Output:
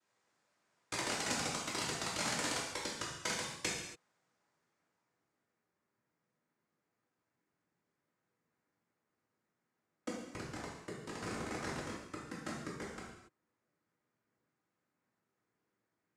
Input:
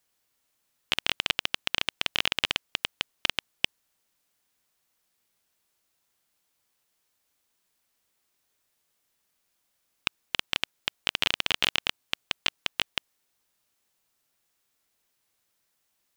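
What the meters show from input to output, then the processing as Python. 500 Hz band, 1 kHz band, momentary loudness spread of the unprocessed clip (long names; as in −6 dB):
−0.5 dB, −3.5 dB, 7 LU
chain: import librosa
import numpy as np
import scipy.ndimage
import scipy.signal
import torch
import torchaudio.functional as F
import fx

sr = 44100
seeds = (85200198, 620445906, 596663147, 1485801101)

y = fx.peak_eq(x, sr, hz=540.0, db=-11.5, octaves=2.0)
y = fx.filter_sweep_lowpass(y, sr, from_hz=1100.0, to_hz=520.0, start_s=3.81, end_s=5.61, q=0.91)
y = np.clip(10.0 ** (20.0 / 20.0) * y, -1.0, 1.0) / 10.0 ** (20.0 / 20.0)
y = fx.noise_vocoder(y, sr, seeds[0], bands=3)
y = fx.rev_gated(y, sr, seeds[1], gate_ms=310, shape='falling', drr_db=-6.0)
y = F.gain(torch.from_numpy(y), 1.0).numpy()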